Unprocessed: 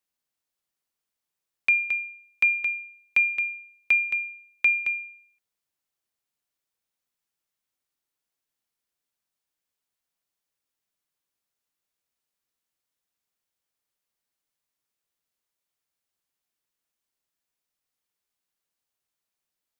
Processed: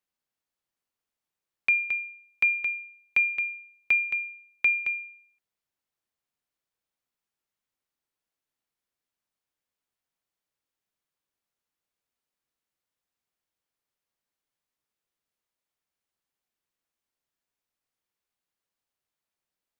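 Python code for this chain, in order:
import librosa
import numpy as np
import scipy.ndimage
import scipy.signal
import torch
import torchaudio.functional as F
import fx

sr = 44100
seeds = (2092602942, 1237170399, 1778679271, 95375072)

y = fx.high_shelf(x, sr, hz=3600.0, db=-6.5)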